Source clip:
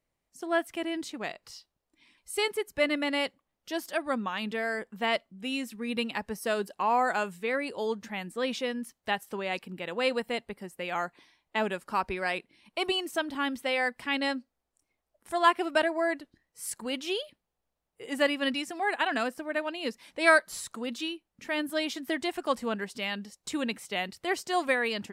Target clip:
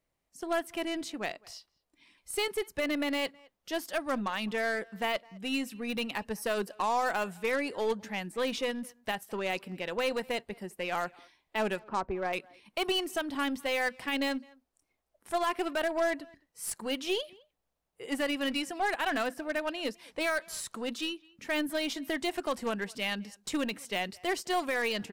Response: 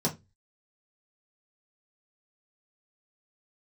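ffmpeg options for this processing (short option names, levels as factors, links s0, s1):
-filter_complex "[0:a]asettb=1/sr,asplit=3[s0][s1][s2];[s0]atrim=end=11.794[s3];[s1]atrim=start=11.79:end=12.33,asetpts=PTS-STARTPTS,afade=t=in:d=0.004:c=qsin,afade=t=out:st=0.536:d=0.004:c=qsin,lowpass=1100[s4];[s2]atrim=start=12.326[s5];[s3][s4]acrossfade=d=0.004:c1=hsin:c2=qsin[s6];[s6][s5]acrossfade=d=0.004:c1=qsin:c2=hsin,alimiter=limit=0.0841:level=0:latency=1:release=49,aeval=exprs='0.0841*(cos(1*acos(clip(val(0)/0.0841,-1,1)))-cos(1*PI/2))+0.00944*(cos(6*acos(clip(val(0)/0.0841,-1,1)))-cos(6*PI/2))+0.00531*(cos(8*acos(clip(val(0)/0.0841,-1,1)))-cos(8*PI/2))':c=same,asplit=2[s7][s8];[s8]adelay=210,highpass=300,lowpass=3400,asoftclip=type=hard:threshold=0.0447,volume=0.0631[s9];[s7][s9]amix=inputs=2:normalize=0,asplit=2[s10][s11];[1:a]atrim=start_sample=2205,asetrate=70560,aresample=44100[s12];[s11][s12]afir=irnorm=-1:irlink=0,volume=0.0447[s13];[s10][s13]amix=inputs=2:normalize=0"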